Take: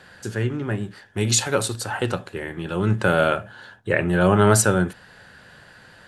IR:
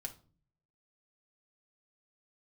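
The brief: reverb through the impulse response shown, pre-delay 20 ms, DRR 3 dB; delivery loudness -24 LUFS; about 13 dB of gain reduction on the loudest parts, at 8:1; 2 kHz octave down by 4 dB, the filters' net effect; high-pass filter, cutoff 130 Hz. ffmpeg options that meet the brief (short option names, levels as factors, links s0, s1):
-filter_complex "[0:a]highpass=130,equalizer=f=2000:t=o:g=-6,acompressor=threshold=0.0447:ratio=8,asplit=2[s0][s1];[1:a]atrim=start_sample=2205,adelay=20[s2];[s1][s2]afir=irnorm=-1:irlink=0,volume=0.944[s3];[s0][s3]amix=inputs=2:normalize=0,volume=2.24"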